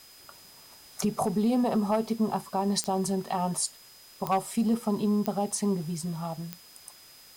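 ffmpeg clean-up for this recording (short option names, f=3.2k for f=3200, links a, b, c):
-af "adeclick=t=4,bandreject=f=5k:w=30,afwtdn=0.0022"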